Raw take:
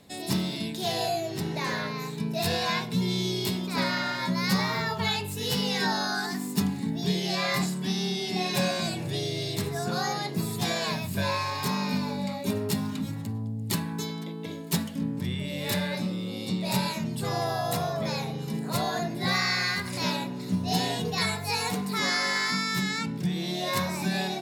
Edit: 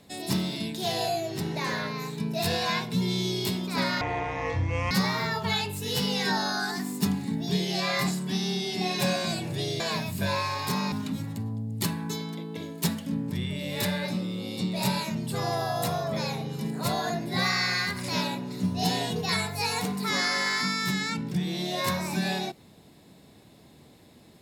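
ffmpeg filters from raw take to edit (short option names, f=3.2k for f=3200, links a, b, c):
-filter_complex "[0:a]asplit=5[a][b][c][d][e];[a]atrim=end=4.014[f];[b]atrim=start=4.01:end=4.46,asetpts=PTS-STARTPTS,asetrate=22050,aresample=44100[g];[c]atrim=start=4.456:end=9.352[h];[d]atrim=start=10.758:end=11.882[i];[e]atrim=start=12.808[j];[f][g]acrossfade=d=0.004:c1=hsin:c2=hsin[k];[k][h]acrossfade=d=0.004:c1=hsin:c2=hsin[l];[l][i]acrossfade=d=0.004:c1=hsin:c2=hsin[m];[m][j]acrossfade=d=0.004:c1=hsin:c2=hsin"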